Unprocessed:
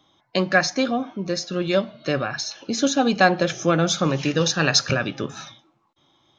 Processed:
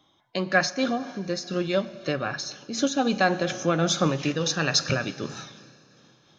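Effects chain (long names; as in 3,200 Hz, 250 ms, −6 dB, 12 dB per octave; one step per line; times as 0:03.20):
four-comb reverb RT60 3 s, combs from 31 ms, DRR 15.5 dB
amplitude modulation by smooth noise, depth 65%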